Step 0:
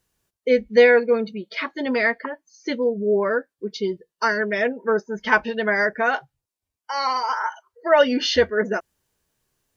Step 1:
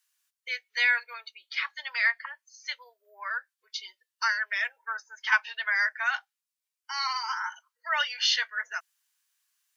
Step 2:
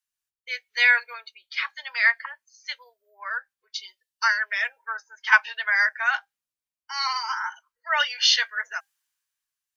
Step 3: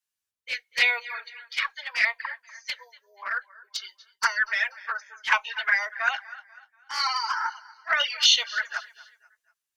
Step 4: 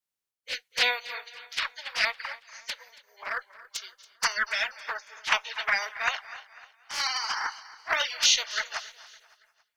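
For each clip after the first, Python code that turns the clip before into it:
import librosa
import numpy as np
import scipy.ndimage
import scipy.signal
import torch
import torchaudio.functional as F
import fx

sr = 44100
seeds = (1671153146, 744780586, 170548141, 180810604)

y1 = scipy.signal.sosfilt(scipy.signal.bessel(6, 1700.0, 'highpass', norm='mag', fs=sr, output='sos'), x)
y2 = fx.low_shelf(y1, sr, hz=430.0, db=6.5)
y2 = fx.comb_fb(y2, sr, f0_hz=800.0, decay_s=0.16, harmonics='all', damping=0.0, mix_pct=30)
y2 = fx.band_widen(y2, sr, depth_pct=40)
y2 = y2 * librosa.db_to_amplitude(6.0)
y3 = fx.echo_feedback(y2, sr, ms=242, feedback_pct=39, wet_db=-20.5)
y3 = fx.env_flanger(y3, sr, rest_ms=10.7, full_db=-17.5)
y3 = fx.cheby_harmonics(y3, sr, harmonics=(6,), levels_db=(-45,), full_scale_db=-9.5)
y3 = y3 * librosa.db_to_amplitude(3.5)
y4 = fx.spec_clip(y3, sr, under_db=18)
y4 = fx.echo_feedback(y4, sr, ms=279, feedback_pct=45, wet_db=-20)
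y4 = y4 * librosa.db_to_amplitude(-2.5)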